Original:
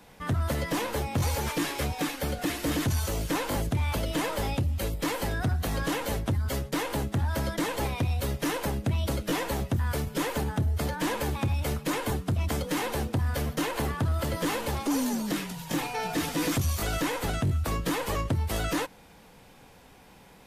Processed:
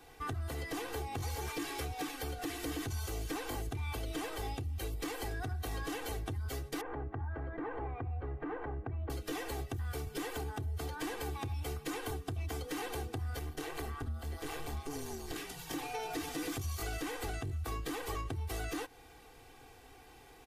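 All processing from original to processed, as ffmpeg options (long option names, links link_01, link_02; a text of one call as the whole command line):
ffmpeg -i in.wav -filter_complex "[0:a]asettb=1/sr,asplit=3[link_01][link_02][link_03];[link_01]atrim=end=6.814[link_04];[link_02]atrim=start=6.81:end=9.1,asetpts=PTS-STARTPTS,afade=type=in:duration=0.004:curve=qsin,afade=type=out:start_time=2.286:duration=0.004:curve=qsin,lowpass=frequency=1700:width=0.5412,lowpass=frequency=1700:width=1.3066,equalizer=frequency=930:width=8:gain=4,acompressor=threshold=-29dB:ratio=6:attack=3.2:release=140:knee=1:detection=peak[link_05];[link_03]atrim=start=9.096[link_06];[link_04][link_05]acrossfade=duration=0.004:curve1=hsin:curve2=qsin[link_07];[link_07][link_06]acrossfade=duration=0.004:curve1=qsin:curve2=hsin,asettb=1/sr,asplit=3[link_08][link_09][link_10];[link_08]atrim=end=13.394[link_11];[link_09]atrim=start=13.39:end=15.36,asetpts=PTS-STARTPTS,afade=type=in:duration=0.004:curve=qsin,afade=type=out:start_time=1.966:duration=0.004:curve=qsin,asubboost=boost=6.5:cutoff=110,tremolo=f=150:d=0.974,asplit=2[link_12][link_13];[link_13]adelay=26,volume=-12dB[link_14];[link_12][link_14]amix=inputs=2:normalize=0,atrim=end_sample=86877[link_15];[link_10]atrim=start=15.356[link_16];[link_11][link_15]acrossfade=duration=0.004:curve1=hsin:curve2=qsin[link_17];[link_17][link_16]acrossfade=duration=0.004:curve1=qsin:curve2=hsin,acompressor=threshold=-33dB:ratio=6,aecho=1:1:2.6:0.9,volume=-5.5dB" out.wav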